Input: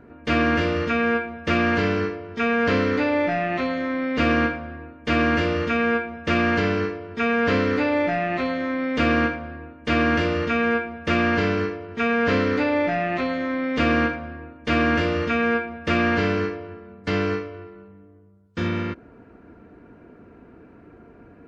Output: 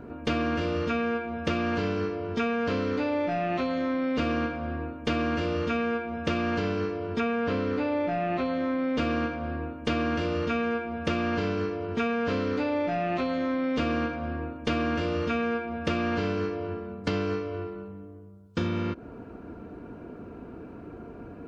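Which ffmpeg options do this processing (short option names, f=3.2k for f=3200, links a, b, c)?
-filter_complex "[0:a]asettb=1/sr,asplit=3[a][b][c];[a]atrim=end=7.204[d];[b]atrim=start=7.2:end=8.98,asetpts=PTS-STARTPTS,afade=t=in:d=0.004:c=qsin,afade=t=out:st=1.776:d=0.004:c=qsin,lowpass=f=3.5k:p=1[e];[c]atrim=start=8.976[f];[d][e]acrossfade=d=0.004:c1=hsin:c2=qsin[g];[g][f]acrossfade=d=0.004:c1=qsin:c2=hsin,equalizer=f=1.9k:t=o:w=0.57:g=-8.5,acompressor=threshold=-31dB:ratio=6,volume=5.5dB"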